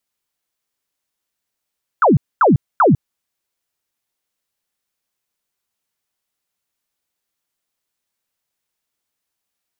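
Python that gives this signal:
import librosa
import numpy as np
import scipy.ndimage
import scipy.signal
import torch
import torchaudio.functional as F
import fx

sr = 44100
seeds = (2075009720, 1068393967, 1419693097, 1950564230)

y = fx.laser_zaps(sr, level_db=-8.0, start_hz=1500.0, end_hz=110.0, length_s=0.15, wave='sine', shots=3, gap_s=0.24)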